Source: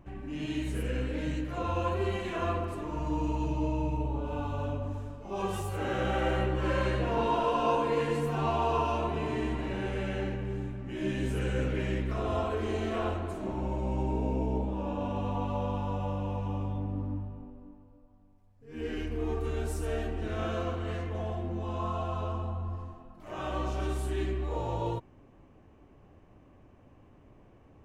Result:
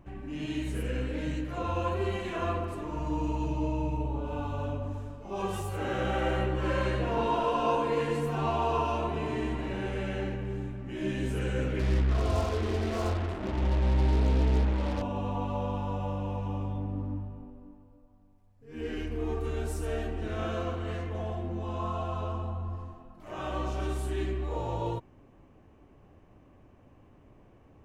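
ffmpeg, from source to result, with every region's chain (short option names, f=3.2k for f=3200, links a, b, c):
-filter_complex "[0:a]asettb=1/sr,asplit=3[a][b][c];[a]atrim=end=11.794[d];[b]atrim=start=11.79:end=15.02,asetpts=PTS-STARTPTS,afade=t=in:d=0.004:c=qsin,afade=t=out:st=3.226:d=0.004:c=qsin,lowpass=f=1.7k:p=1,equalizer=f=64:t=o:w=1.1:g=9,acrusher=bits=5:mix=0:aa=0.5[e];[c]atrim=start=15.016[f];[d][e]acrossfade=d=0.004:c1=hsin:c2=qsin[g];[g][f]acrossfade=d=0.004:c1=qsin:c2=hsin"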